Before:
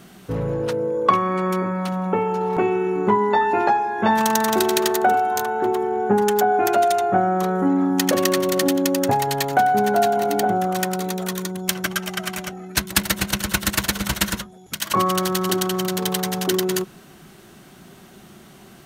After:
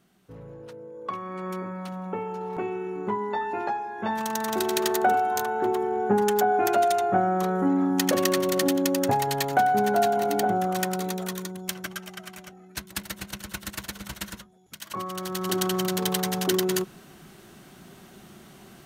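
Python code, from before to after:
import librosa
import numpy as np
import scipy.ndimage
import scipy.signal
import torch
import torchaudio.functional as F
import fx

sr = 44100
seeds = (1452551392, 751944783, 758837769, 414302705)

y = fx.gain(x, sr, db=fx.line((0.91, -19.0), (1.5, -10.5), (4.26, -10.5), (4.96, -4.0), (11.08, -4.0), (12.28, -14.0), (15.1, -14.0), (15.64, -3.0)))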